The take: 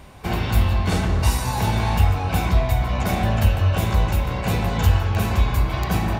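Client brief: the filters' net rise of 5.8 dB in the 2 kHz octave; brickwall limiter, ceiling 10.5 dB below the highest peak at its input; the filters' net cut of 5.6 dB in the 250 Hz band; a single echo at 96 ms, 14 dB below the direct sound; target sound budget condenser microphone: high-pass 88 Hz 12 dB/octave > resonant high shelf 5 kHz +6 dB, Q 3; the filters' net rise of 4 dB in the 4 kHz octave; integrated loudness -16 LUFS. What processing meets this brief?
peaking EQ 250 Hz -8.5 dB; peaking EQ 2 kHz +7.5 dB; peaking EQ 4 kHz +5 dB; peak limiter -16.5 dBFS; high-pass 88 Hz 12 dB/octave; resonant high shelf 5 kHz +6 dB, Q 3; delay 96 ms -14 dB; trim +10.5 dB

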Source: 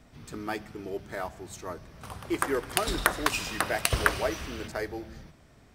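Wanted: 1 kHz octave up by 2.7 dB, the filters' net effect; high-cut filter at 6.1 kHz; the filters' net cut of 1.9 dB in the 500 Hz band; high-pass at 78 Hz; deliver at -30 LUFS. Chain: high-pass 78 Hz; low-pass 6.1 kHz; peaking EQ 500 Hz -4 dB; peaking EQ 1 kHz +4.5 dB; trim +0.5 dB

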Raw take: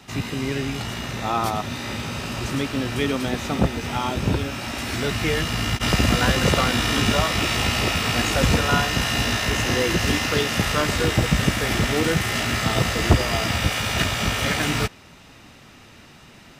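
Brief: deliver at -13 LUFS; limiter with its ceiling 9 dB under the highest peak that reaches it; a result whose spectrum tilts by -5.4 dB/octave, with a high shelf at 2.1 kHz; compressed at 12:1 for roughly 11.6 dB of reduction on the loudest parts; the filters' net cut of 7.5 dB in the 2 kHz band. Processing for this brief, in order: peaking EQ 2 kHz -4.5 dB; treble shelf 2.1 kHz -8.5 dB; compression 12:1, threshold -22 dBFS; trim +17.5 dB; peak limiter -3 dBFS

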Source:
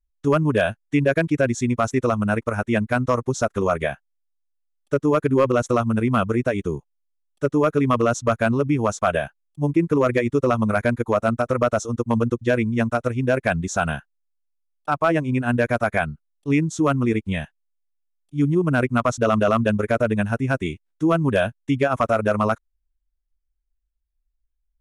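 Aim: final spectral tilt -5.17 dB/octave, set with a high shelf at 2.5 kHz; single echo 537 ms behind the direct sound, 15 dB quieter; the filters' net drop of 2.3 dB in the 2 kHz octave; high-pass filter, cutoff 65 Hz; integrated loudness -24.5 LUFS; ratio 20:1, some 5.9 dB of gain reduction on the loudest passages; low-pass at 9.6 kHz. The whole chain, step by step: high-pass 65 Hz; low-pass 9.6 kHz; peaking EQ 2 kHz -5.5 dB; treble shelf 2.5 kHz +4.5 dB; compression 20:1, threshold -20 dBFS; delay 537 ms -15 dB; trim +2 dB

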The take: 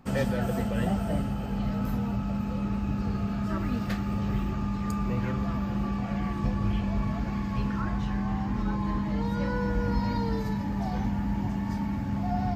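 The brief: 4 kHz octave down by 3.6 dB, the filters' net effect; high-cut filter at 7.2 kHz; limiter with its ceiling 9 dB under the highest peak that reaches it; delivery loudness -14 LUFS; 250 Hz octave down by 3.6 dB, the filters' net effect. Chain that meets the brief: low-pass 7.2 kHz; peaking EQ 250 Hz -5 dB; peaking EQ 4 kHz -4.5 dB; trim +20.5 dB; peak limiter -5 dBFS

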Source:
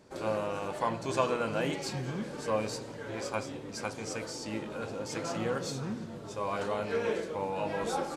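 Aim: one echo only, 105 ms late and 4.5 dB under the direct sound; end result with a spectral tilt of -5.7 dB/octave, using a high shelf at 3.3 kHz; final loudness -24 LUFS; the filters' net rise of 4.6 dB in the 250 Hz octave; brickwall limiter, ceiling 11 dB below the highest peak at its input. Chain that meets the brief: peaking EQ 250 Hz +6 dB; treble shelf 3.3 kHz -7 dB; peak limiter -24 dBFS; delay 105 ms -4.5 dB; trim +10 dB

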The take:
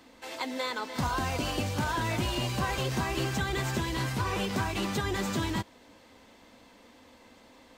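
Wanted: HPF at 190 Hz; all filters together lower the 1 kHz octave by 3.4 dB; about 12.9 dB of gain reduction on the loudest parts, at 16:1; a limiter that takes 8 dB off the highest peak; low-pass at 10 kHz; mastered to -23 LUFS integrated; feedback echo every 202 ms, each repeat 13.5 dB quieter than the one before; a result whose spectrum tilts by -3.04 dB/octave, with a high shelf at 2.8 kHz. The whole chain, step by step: high-pass 190 Hz; low-pass 10 kHz; peaking EQ 1 kHz -4.5 dB; treble shelf 2.8 kHz +4 dB; compression 16:1, threshold -41 dBFS; peak limiter -37 dBFS; feedback delay 202 ms, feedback 21%, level -13.5 dB; trim +24 dB

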